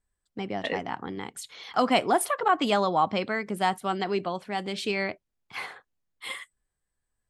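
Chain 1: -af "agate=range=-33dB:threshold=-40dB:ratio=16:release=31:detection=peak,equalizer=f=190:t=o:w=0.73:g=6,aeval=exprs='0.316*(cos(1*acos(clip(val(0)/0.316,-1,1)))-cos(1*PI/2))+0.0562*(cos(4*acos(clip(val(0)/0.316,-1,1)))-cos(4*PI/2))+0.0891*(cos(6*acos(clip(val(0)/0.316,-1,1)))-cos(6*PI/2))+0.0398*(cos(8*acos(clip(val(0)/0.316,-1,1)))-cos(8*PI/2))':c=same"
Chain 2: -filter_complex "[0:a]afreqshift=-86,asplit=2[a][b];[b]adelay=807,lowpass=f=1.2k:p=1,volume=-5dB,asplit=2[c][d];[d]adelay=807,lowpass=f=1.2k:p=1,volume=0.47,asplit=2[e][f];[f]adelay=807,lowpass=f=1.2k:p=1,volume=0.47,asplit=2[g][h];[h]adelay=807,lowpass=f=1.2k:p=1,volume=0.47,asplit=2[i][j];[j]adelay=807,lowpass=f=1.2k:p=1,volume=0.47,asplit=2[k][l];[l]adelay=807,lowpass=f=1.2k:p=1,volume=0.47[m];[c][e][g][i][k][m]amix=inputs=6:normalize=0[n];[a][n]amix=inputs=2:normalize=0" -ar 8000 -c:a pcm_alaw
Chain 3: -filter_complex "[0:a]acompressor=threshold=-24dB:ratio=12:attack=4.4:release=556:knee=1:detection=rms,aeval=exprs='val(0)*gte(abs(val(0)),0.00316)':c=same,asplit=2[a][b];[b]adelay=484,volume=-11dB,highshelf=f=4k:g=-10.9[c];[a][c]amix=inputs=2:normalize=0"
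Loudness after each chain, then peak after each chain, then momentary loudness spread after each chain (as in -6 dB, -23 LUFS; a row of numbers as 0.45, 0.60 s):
-26.5, -27.5, -34.0 LUFS; -7.5, -9.5, -17.5 dBFS; 18, 16, 12 LU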